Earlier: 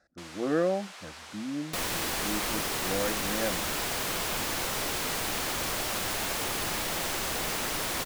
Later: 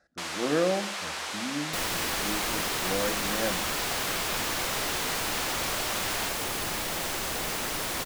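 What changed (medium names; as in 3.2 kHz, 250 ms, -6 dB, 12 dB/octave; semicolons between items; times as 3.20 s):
first sound +11.5 dB; reverb: on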